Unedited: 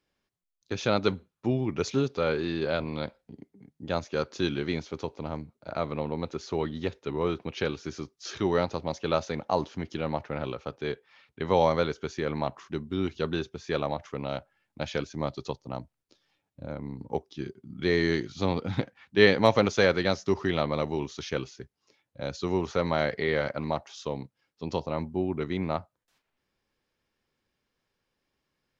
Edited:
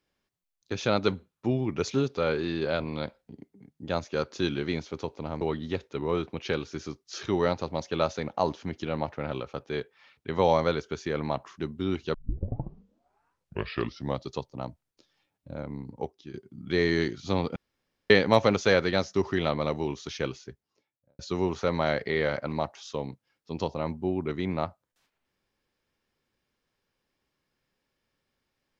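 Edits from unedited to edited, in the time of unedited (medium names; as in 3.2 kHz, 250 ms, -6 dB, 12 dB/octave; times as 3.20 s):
5.41–6.53 s: delete
13.26 s: tape start 2.12 s
16.89–17.46 s: fade out, to -9.5 dB
18.68–19.22 s: room tone
21.48–22.31 s: studio fade out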